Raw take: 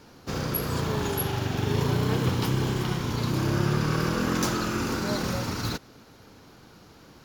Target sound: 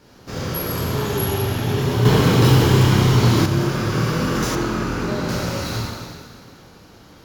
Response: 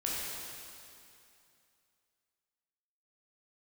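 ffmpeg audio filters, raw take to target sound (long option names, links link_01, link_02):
-filter_complex "[1:a]atrim=start_sample=2205,asetrate=57330,aresample=44100[link_01];[0:a][link_01]afir=irnorm=-1:irlink=0,asettb=1/sr,asplit=3[link_02][link_03][link_04];[link_02]atrim=end=2.054[link_05];[link_03]atrim=start=2.05:end=3.46,asetpts=PTS-STARTPTS,afade=type=in:duration=0.004:curve=qsin,afade=type=out:start_time=1.406:duration=0.004:curve=qsin,acontrast=71[link_06];[link_04]atrim=start=3.456[link_07];[link_05][link_06]acrossfade=duration=0.004:curve1=hsin:curve2=qsin[link_08];[link_08][link_07]acrossfade=duration=0.004:curve1=qsin:curve2=hsin,asettb=1/sr,asplit=3[link_09][link_10][link_11];[link_09]atrim=end=4.554[link_12];[link_10]atrim=start=4.55:end=5.29,asetpts=PTS-STARTPTS,afade=type=in:duration=0.004:curve=qsin,afade=type=out:start_time=0.736:duration=0.004:curve=qsin,highshelf=frequency=3900:gain=-10[link_13];[link_11]atrim=start=5.286[link_14];[link_12][link_13]acrossfade=duration=0.004:curve1=hsin:curve2=qsin[link_15];[link_15][link_14]acrossfade=duration=0.004:curve1=qsin:curve2=hsin,volume=2dB"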